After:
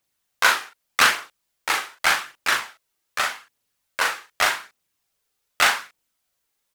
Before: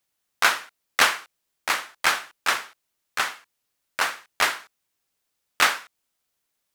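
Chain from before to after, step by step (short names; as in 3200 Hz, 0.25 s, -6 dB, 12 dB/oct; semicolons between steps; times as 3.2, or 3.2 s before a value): phaser 0.84 Hz, delay 2.6 ms, feedback 35%; doubler 39 ms -4 dB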